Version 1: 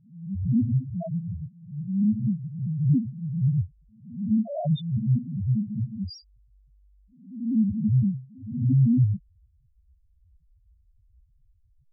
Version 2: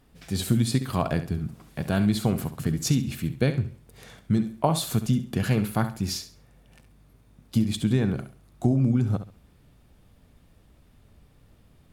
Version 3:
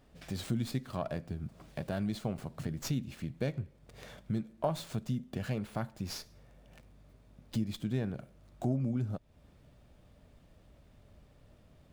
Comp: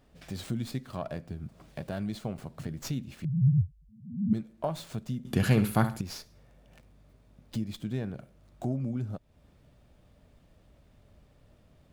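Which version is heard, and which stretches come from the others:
3
0:03.25–0:04.33: punch in from 1
0:05.25–0:06.01: punch in from 2

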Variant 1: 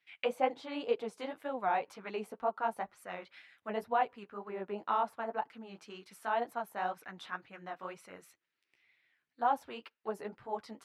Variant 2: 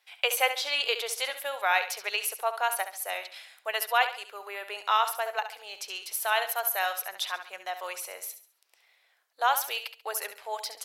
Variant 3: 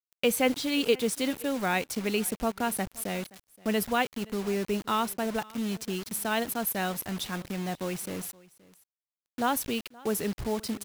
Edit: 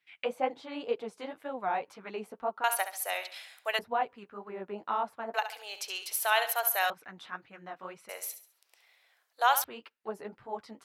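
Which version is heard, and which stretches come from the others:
1
0:02.64–0:03.79: punch in from 2
0:05.34–0:06.90: punch in from 2
0:08.09–0:09.64: punch in from 2
not used: 3

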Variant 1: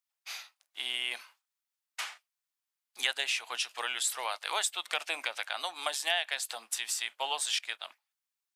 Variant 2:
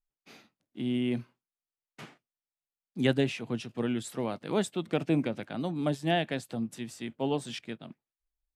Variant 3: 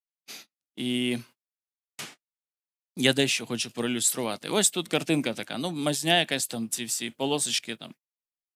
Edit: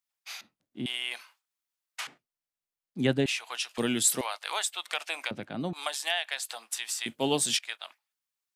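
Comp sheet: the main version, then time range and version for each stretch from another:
1
0:00.41–0:00.86: punch in from 2
0:02.07–0:03.26: punch in from 2
0:03.78–0:04.21: punch in from 3
0:05.31–0:05.73: punch in from 2
0:07.06–0:07.57: punch in from 3

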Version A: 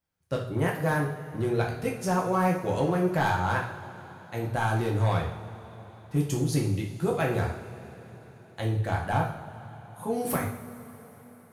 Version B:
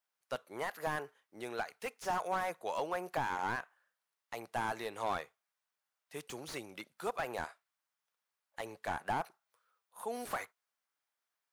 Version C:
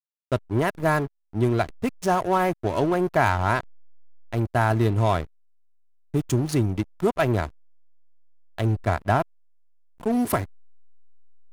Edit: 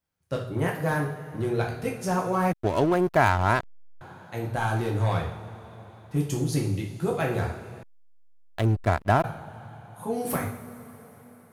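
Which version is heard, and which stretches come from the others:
A
0:02.52–0:04.01: punch in from C
0:07.83–0:09.24: punch in from C
not used: B

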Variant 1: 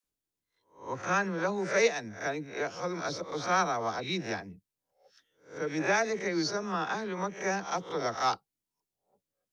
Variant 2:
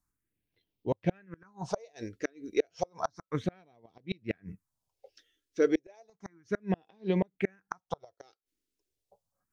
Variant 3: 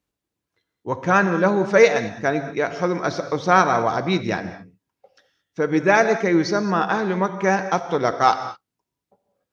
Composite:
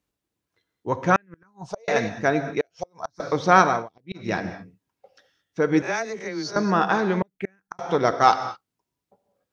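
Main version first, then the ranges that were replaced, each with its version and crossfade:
3
0:01.16–0:01.88: punch in from 2
0:02.61–0:03.20: punch in from 2
0:03.77–0:04.26: punch in from 2, crossfade 0.24 s
0:05.82–0:06.56: punch in from 1
0:07.22–0:07.79: punch in from 2

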